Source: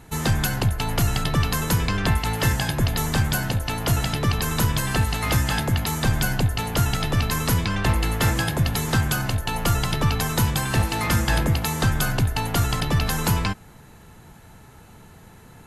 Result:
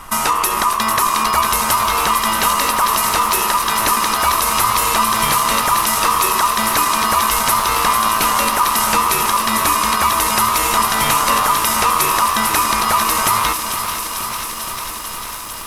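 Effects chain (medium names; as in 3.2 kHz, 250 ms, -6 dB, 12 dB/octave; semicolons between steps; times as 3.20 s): treble shelf 8.4 kHz +10.5 dB; in parallel at 0 dB: peak limiter -15.5 dBFS, peak gain reduction 9 dB; on the sum: compression 2:1, threshold -20 dBFS, peak gain reduction 5.5 dB; on a send: feedback echo behind a high-pass 446 ms, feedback 82%, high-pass 2.4 kHz, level -7.5 dB; on the sum: ring modulator 1.1 kHz; added noise brown -49 dBFS; bit-crushed delay 469 ms, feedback 80%, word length 7-bit, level -10 dB; trim +6.5 dB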